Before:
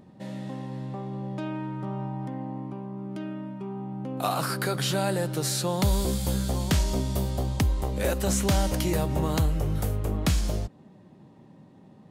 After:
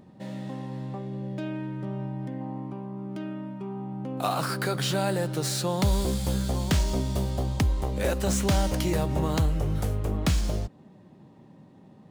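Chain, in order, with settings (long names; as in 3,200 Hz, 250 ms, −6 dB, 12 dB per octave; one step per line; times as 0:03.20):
running median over 3 samples
gain on a spectral selection 0:00.98–0:02.41, 670–1,400 Hz −7 dB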